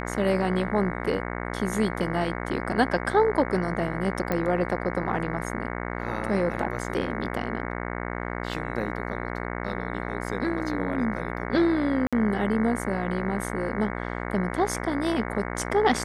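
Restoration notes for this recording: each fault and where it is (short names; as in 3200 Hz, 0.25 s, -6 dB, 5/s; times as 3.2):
buzz 60 Hz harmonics 37 -32 dBFS
4.32 pop -13 dBFS
12.07–12.13 gap 56 ms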